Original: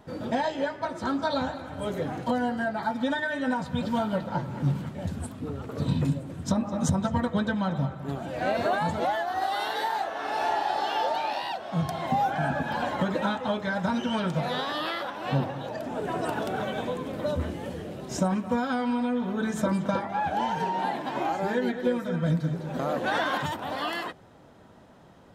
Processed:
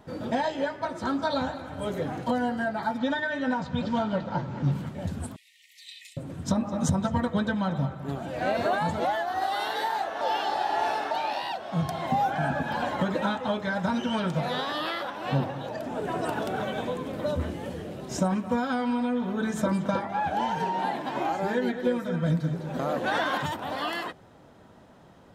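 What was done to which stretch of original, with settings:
2.98–4.72 LPF 6700 Hz 24 dB/oct
5.36–6.17 brick-wall FIR high-pass 1800 Hz
10.21–11.11 reverse

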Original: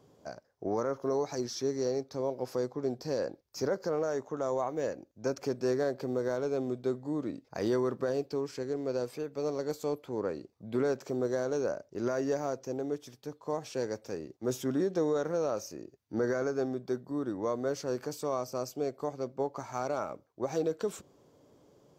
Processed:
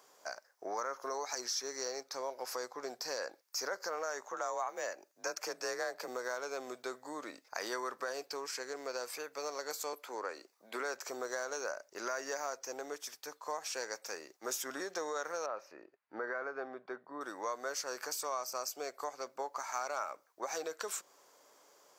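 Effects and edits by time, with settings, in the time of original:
4.32–6.08 frequency shift +40 Hz
9.93–10.94 HPF 210 Hz 24 dB/oct
15.46–17.21 air absorption 490 m
whole clip: HPF 1300 Hz 12 dB/oct; bell 3300 Hz -7.5 dB 0.92 oct; compressor 2:1, threshold -50 dBFS; gain +12 dB

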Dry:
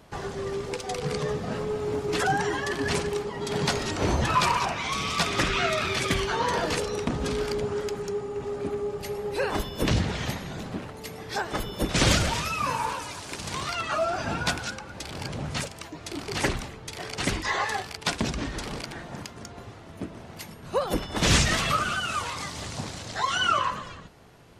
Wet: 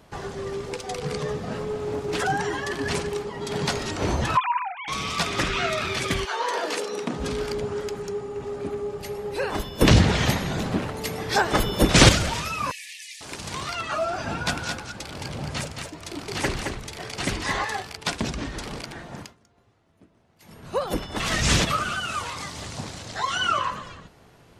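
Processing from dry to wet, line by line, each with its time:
1.73–2.23 Doppler distortion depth 0.23 ms
4.37–4.88 sine-wave speech
6.24–7.17 HPF 540 Hz -> 150 Hz 24 dB/oct
9.81–12.09 gain +8.5 dB
12.71–13.21 brick-wall FIR high-pass 1700 Hz
14.26–17.65 echo 0.219 s -5.5 dB
19.2–20.57 dip -20 dB, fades 0.17 s
21.2–21.67 reverse

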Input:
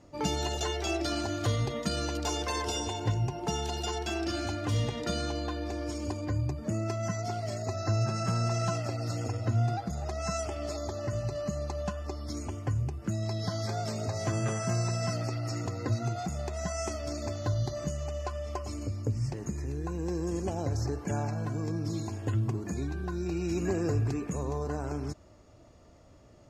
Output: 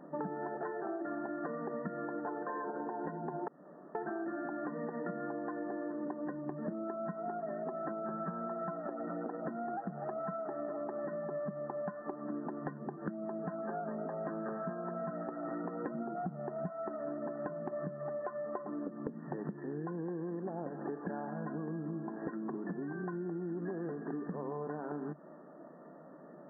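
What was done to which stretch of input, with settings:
3.48–3.95 room tone
15.95–16.69 tilt -2.5 dB/oct
whole clip: FFT band-pass 140–1900 Hz; compressor 12:1, threshold -42 dBFS; gain +6.5 dB

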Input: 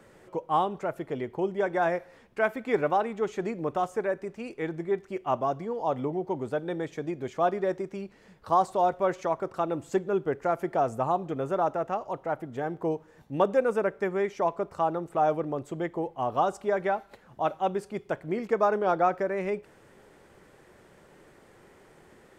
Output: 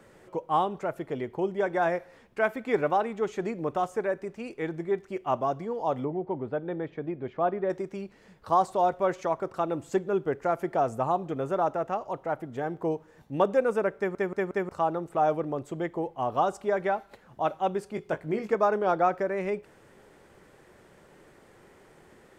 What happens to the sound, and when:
6.04–7.7 air absorption 390 m
13.97 stutter in place 0.18 s, 4 plays
17.95–18.55 doubler 19 ms -7 dB

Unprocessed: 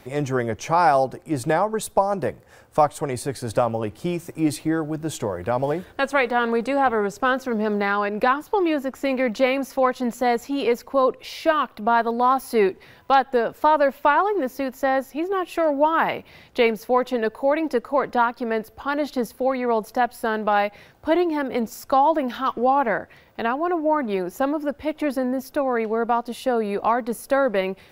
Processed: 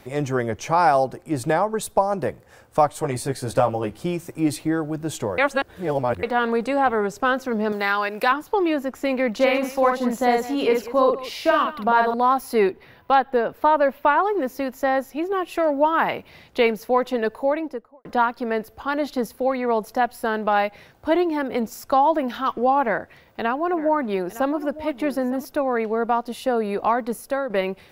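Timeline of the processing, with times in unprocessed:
2.96–4.03 doubler 15 ms -4 dB
5.38–6.23 reverse
7.72–8.32 tilt +3 dB/oct
9.35–12.14 tapped delay 49/190 ms -3.5/-15.5 dB
12.7–14.23 bell 7700 Hz -11.5 dB 1.2 oct
17.34–18.05 studio fade out
22.82–25.45 echo 0.909 s -15.5 dB
27.1–27.5 fade out linear, to -9 dB

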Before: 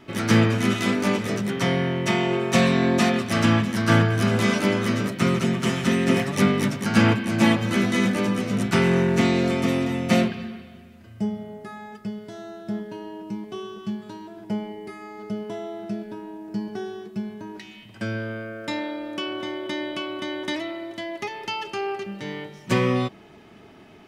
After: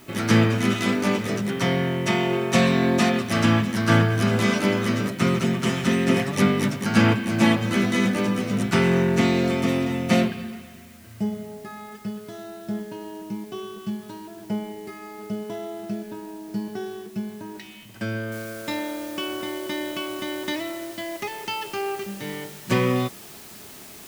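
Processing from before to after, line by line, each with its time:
10.41–12.37 narrowing echo 0.117 s, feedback 74%, band-pass 1600 Hz, level -7.5 dB
18.32 noise floor step -54 dB -44 dB

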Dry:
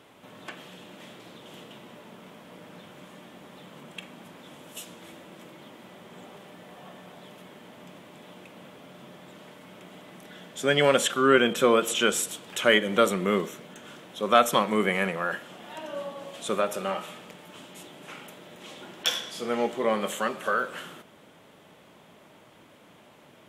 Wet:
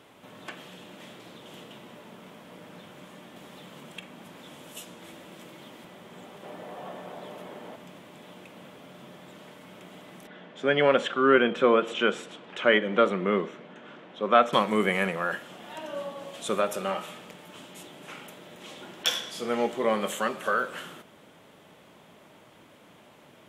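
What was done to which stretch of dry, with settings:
3.36–5.85 three-band squash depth 40%
6.43–7.76 bell 620 Hz +8.5 dB 2.3 oct
10.27–14.53 BPF 160–2600 Hz

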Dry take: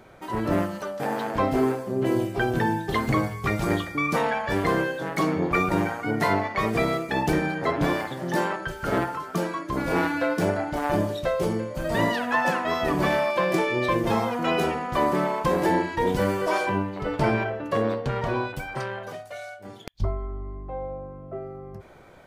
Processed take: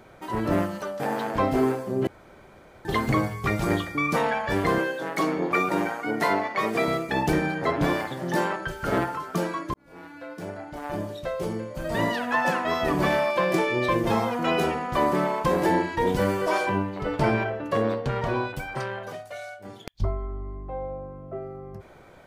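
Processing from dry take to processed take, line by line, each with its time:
2.07–2.85 room tone
4.78–6.88 HPF 230 Hz
9.74–12.61 fade in

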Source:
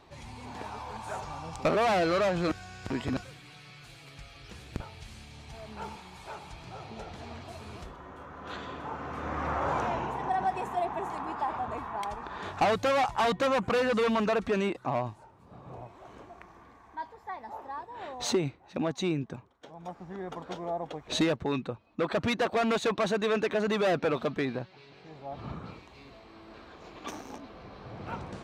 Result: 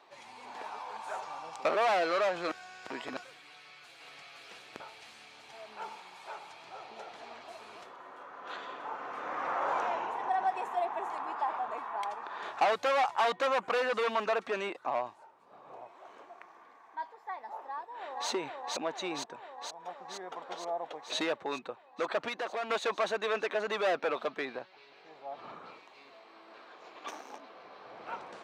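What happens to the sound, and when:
3.48–4.06 echo throw 0.52 s, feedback 75%, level -0.5 dB
17.63–18.29 echo throw 0.47 s, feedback 75%, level -1 dB
22.28–22.7 compressor, threshold -29 dBFS
whole clip: HPF 540 Hz 12 dB/oct; high shelf 5300 Hz -7.5 dB

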